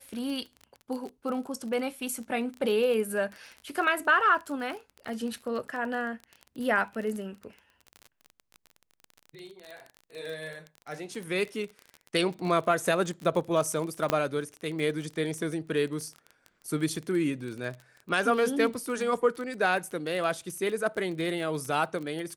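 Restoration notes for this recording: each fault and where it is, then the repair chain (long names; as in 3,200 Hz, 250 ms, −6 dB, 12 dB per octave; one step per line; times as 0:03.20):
surface crackle 28 per second −34 dBFS
0:14.10: click −10 dBFS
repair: click removal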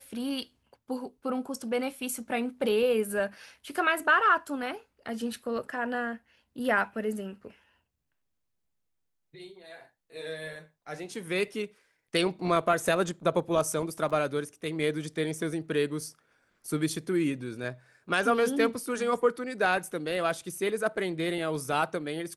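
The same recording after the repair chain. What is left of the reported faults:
0:14.10: click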